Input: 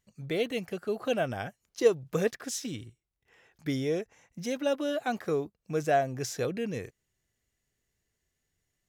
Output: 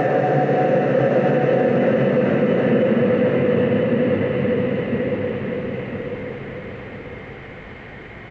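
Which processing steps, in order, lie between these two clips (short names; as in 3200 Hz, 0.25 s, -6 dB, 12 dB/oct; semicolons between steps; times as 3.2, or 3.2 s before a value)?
zero-crossing step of -38.5 dBFS; HPF 110 Hz 6 dB/oct; expander -43 dBFS; LPF 2100 Hz 24 dB/oct; wide varispeed 1.07×; flange 1.3 Hz, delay 3.6 ms, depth 5.9 ms, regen -65%; Paulstretch 7.2×, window 1.00 s, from 5.85; on a send: feedback echo 1 s, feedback 29%, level -4.5 dB; on the sum: maximiser +26.5 dB; gain -7.5 dB; G.722 64 kbps 16000 Hz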